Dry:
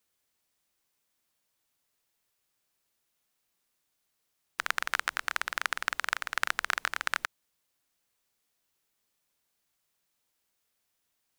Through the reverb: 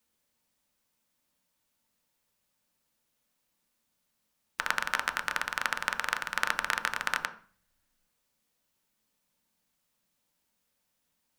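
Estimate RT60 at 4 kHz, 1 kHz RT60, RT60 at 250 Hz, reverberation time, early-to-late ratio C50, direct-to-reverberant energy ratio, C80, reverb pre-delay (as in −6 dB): 0.40 s, 0.45 s, 0.70 s, 0.40 s, 13.0 dB, 5.0 dB, 17.0 dB, 3 ms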